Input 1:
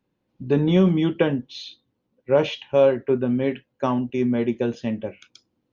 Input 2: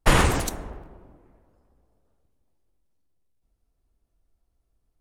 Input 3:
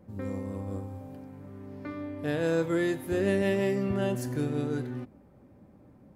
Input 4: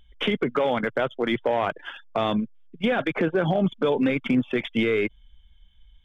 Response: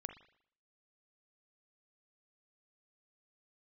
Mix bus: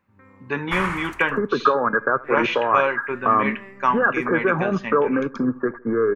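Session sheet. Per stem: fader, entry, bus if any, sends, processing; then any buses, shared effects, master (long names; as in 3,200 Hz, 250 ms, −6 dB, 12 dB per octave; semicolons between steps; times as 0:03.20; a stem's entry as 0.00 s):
−5.5 dB, 0.00 s, no send, no echo send, spectral tilt +2 dB per octave
−9.5 dB, 0.65 s, no send, echo send −14 dB, automatic ducking −14 dB, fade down 1.35 s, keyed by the first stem
−18.5 dB, 0.00 s, no send, no echo send, high-shelf EQ 5,300 Hz −8 dB
+2.5 dB, 1.10 s, no send, echo send −20.5 dB, Chebyshev low-pass with heavy ripple 1,700 Hz, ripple 9 dB; tilt shelving filter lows +3.5 dB, about 730 Hz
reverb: not used
echo: repeating echo 79 ms, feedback 40%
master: flat-topped bell 1,500 Hz +15.5 dB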